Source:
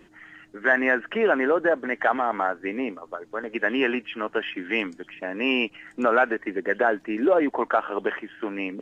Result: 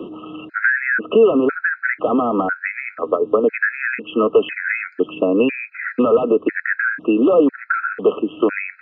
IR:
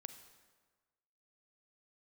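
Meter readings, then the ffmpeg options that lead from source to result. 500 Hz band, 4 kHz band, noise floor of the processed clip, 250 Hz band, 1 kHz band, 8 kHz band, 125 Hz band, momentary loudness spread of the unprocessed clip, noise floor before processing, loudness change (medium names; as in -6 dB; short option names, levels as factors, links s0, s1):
+8.0 dB, -2.0 dB, -46 dBFS, +8.0 dB, +1.5 dB, no reading, +10.0 dB, 11 LU, -55 dBFS, +6.5 dB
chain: -filter_complex "[0:a]apsyclip=11.9,acrossover=split=190|680[s0][s1][s2];[s0]acompressor=threshold=0.0316:ratio=4[s3];[s1]acompressor=threshold=0.0891:ratio=4[s4];[s2]acompressor=threshold=0.0794:ratio=4[s5];[s3][s4][s5]amix=inputs=3:normalize=0,highpass=130,equalizer=f=130:t=q:w=4:g=-5,equalizer=f=280:t=q:w=4:g=4,equalizer=f=460:t=q:w=4:g=9,equalizer=f=850:t=q:w=4:g=-10,equalizer=f=1500:t=q:w=4:g=7,lowpass=f=2600:w=0.5412,lowpass=f=2600:w=1.3066,areverse,acompressor=mode=upward:threshold=0.0224:ratio=2.5,areverse,afftfilt=real='re*gt(sin(2*PI*1*pts/sr)*(1-2*mod(floor(b*sr/1024/1300),2)),0)':imag='im*gt(sin(2*PI*1*pts/sr)*(1-2*mod(floor(b*sr/1024/1300),2)),0)':win_size=1024:overlap=0.75"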